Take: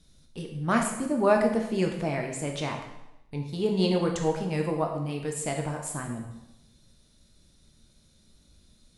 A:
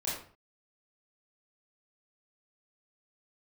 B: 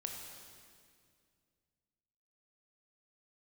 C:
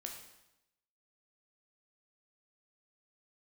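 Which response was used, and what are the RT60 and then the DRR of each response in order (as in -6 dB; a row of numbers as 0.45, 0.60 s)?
C; 0.45, 2.2, 0.90 s; -8.5, 1.5, 1.5 dB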